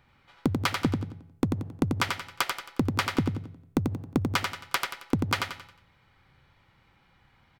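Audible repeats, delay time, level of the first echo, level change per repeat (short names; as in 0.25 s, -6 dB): 4, 90 ms, -4.5 dB, -8.5 dB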